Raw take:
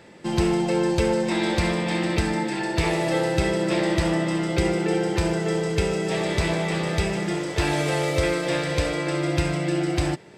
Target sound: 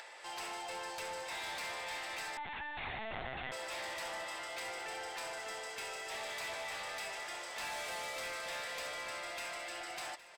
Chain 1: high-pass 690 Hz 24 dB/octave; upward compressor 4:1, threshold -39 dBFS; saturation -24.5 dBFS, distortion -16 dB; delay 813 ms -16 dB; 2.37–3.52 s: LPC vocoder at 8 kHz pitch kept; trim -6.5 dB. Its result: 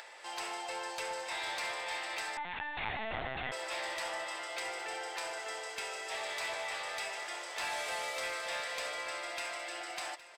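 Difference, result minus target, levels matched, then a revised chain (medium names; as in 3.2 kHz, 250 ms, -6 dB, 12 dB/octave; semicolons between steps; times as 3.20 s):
saturation: distortion -7 dB
high-pass 690 Hz 24 dB/octave; upward compressor 4:1, threshold -39 dBFS; saturation -32 dBFS, distortion -9 dB; delay 813 ms -16 dB; 2.37–3.52 s: LPC vocoder at 8 kHz pitch kept; trim -6.5 dB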